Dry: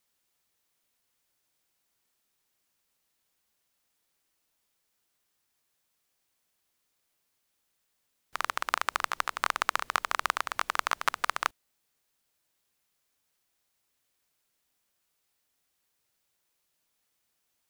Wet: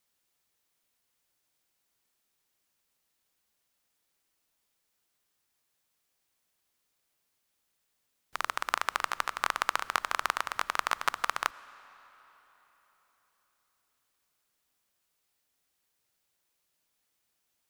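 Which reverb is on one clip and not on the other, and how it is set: algorithmic reverb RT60 4.2 s, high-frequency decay 0.8×, pre-delay 55 ms, DRR 19 dB; trim -1 dB

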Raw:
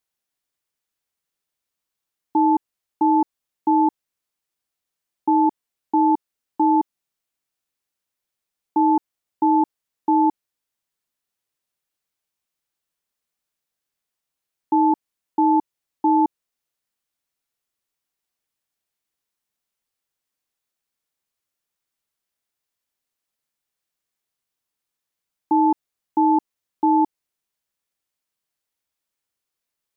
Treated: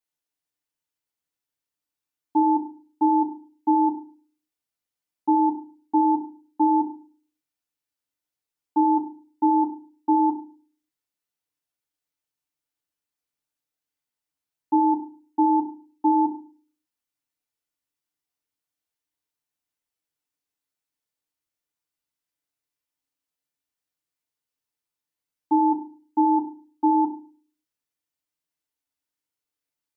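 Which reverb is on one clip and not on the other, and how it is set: FDN reverb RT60 0.38 s, low-frequency decay 1.4×, high-frequency decay 0.95×, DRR -0.5 dB; trim -8.5 dB

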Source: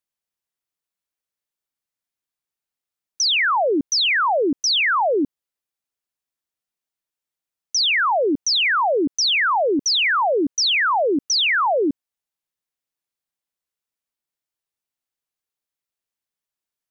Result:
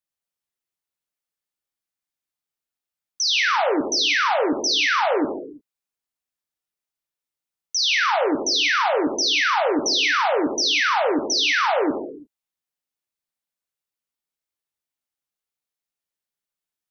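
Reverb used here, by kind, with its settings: gated-style reverb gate 370 ms falling, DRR 2 dB; trim -3.5 dB

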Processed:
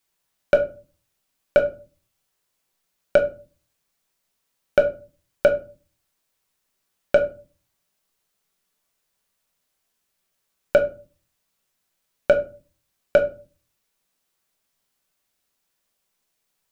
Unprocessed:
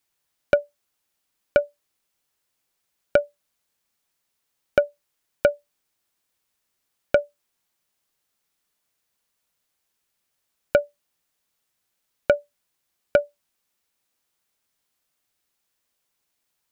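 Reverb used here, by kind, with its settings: simulated room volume 190 m³, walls furnished, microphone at 1.1 m

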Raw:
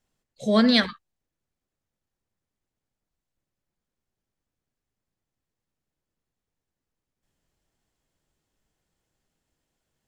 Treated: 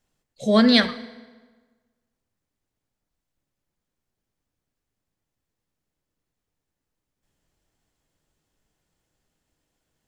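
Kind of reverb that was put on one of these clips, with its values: FDN reverb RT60 1.4 s, low-frequency decay 1×, high-frequency decay 0.75×, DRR 13.5 dB; trim +2.5 dB

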